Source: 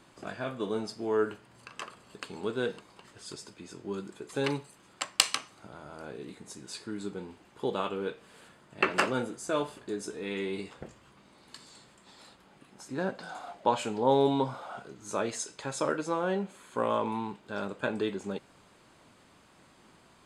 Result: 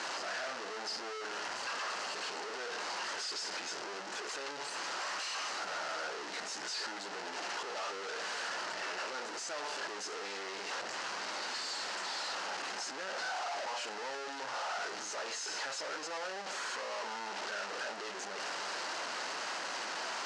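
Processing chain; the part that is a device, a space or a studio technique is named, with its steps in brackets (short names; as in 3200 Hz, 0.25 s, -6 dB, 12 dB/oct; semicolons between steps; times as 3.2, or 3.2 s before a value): home computer beeper (infinite clipping; speaker cabinet 750–5900 Hz, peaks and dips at 1100 Hz -4 dB, 2300 Hz -6 dB, 3500 Hz -8 dB); gain +1 dB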